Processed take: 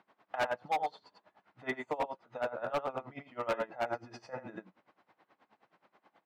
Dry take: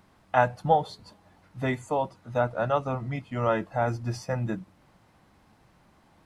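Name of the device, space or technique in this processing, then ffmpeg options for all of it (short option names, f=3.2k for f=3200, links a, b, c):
helicopter radio: -filter_complex "[0:a]asettb=1/sr,asplit=3[a][b][c];[a]atrim=end=0.564[d];[b]atrim=start=0.56:end=1.83,asetpts=PTS-STARTPTS,afade=t=in:d=0.004:c=qsin,afade=t=out:st=1.266:d=0.004:c=qsin,equalizer=f=510:t=o:w=0.32:g=-4.5[e];[c]atrim=start=1.826[f];[d][e]acrossfade=d=0.004:c1=hsin:c2=qsin[g];[g][f]acrossfade=d=0.004:c1=qsin:c2=hsin,highpass=380,lowpass=3k,aecho=1:1:85:0.562,aeval=exprs='val(0)*pow(10,-21*(0.5-0.5*cos(2*PI*9.4*n/s))/20)':c=same,asoftclip=type=hard:threshold=-26.5dB"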